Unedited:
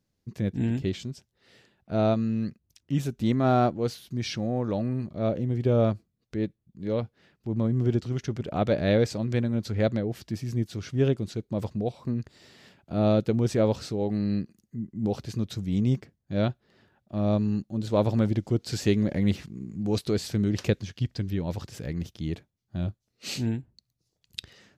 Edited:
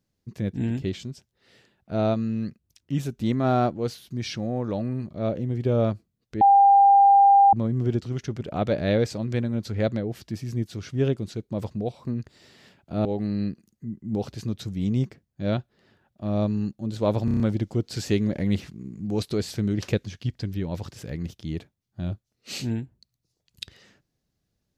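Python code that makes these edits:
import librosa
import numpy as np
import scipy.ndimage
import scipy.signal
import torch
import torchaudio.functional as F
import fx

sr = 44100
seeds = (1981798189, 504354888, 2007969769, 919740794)

y = fx.edit(x, sr, fx.bleep(start_s=6.41, length_s=1.12, hz=797.0, db=-11.5),
    fx.cut(start_s=13.05, length_s=0.91),
    fx.stutter(start_s=18.16, slice_s=0.03, count=6), tone=tone)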